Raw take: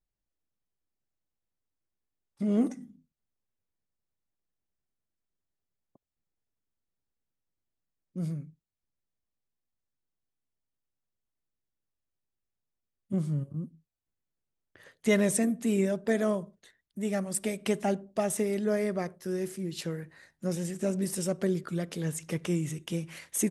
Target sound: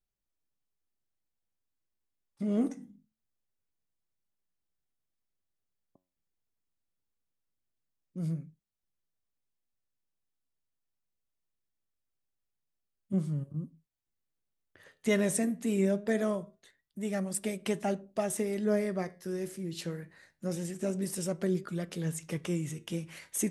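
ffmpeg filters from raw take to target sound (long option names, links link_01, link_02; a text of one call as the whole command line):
ffmpeg -i in.wav -af "flanger=delay=4.7:depth=8:regen=82:speed=0.23:shape=triangular,volume=2dB" out.wav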